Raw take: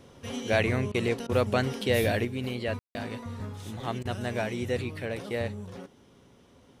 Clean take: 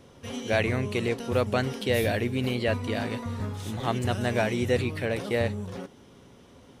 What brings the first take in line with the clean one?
room tone fill 2.79–2.95; interpolate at 0.92/1.27/4.03, 22 ms; gain correction +5 dB, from 2.25

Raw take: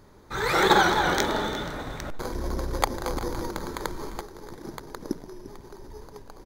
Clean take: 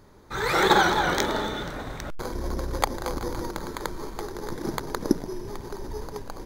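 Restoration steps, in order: inverse comb 0.348 s -15.5 dB; gain correction +8.5 dB, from 4.2

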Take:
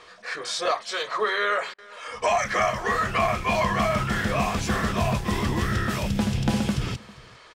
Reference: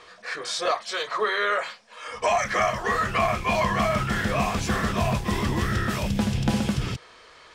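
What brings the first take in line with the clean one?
interpolate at 1.74, 42 ms; inverse comb 0.399 s -22.5 dB

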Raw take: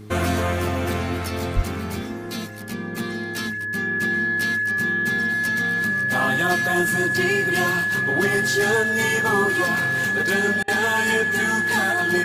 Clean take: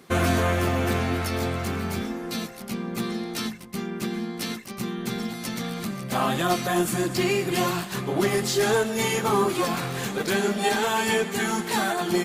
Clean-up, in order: de-hum 105.5 Hz, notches 4; notch 1700 Hz, Q 30; 1.55–1.67 HPF 140 Hz 24 dB/oct; interpolate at 10.63, 49 ms

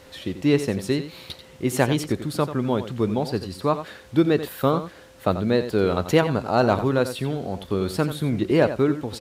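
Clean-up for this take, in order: clip repair -7 dBFS; notch 520 Hz, Q 30; inverse comb 89 ms -11.5 dB

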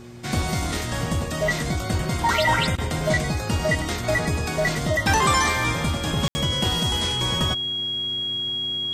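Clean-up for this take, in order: de-hum 119.6 Hz, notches 3; notch 3300 Hz, Q 30; room tone fill 6.28–6.35

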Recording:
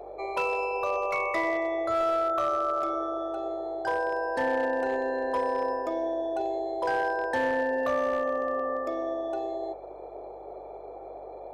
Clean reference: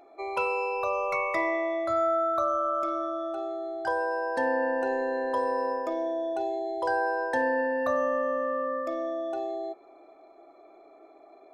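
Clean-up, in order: clip repair -21 dBFS; de-hum 49.4 Hz, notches 4; noise print and reduce 11 dB

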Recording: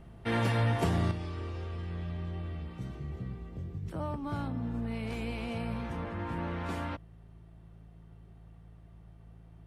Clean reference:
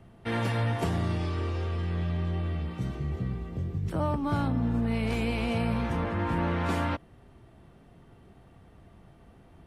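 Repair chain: de-hum 55.1 Hz, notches 3; gain correction +7.5 dB, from 1.11

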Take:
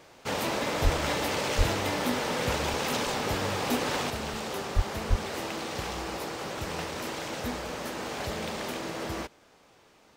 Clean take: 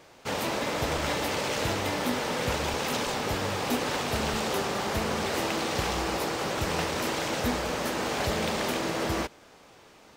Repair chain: de-plosive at 0.83/1.57/4.75/5.09; gain correction +5.5 dB, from 4.1

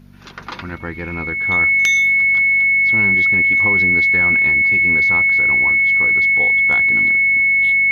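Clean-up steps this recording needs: clip repair -6 dBFS; de-hum 48.1 Hz, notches 5; notch 2200 Hz, Q 30

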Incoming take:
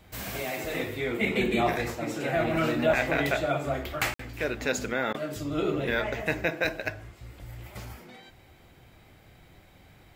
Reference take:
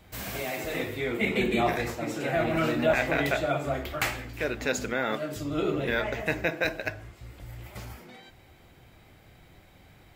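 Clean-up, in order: interpolate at 4.14, 54 ms; interpolate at 5.13, 13 ms

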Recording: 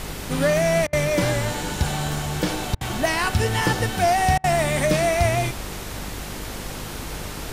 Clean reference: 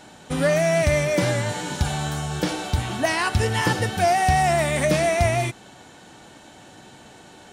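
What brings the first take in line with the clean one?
de-hum 50.3 Hz, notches 10; interpolate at 0.87/2.75/4.38, 58 ms; noise print and reduce 14 dB

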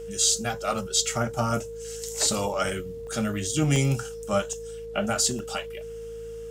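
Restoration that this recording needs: de-hum 54.4 Hz, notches 4; notch 460 Hz, Q 30; interpolate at 2.69/3.07/3.76/4.53/5.39, 1.1 ms

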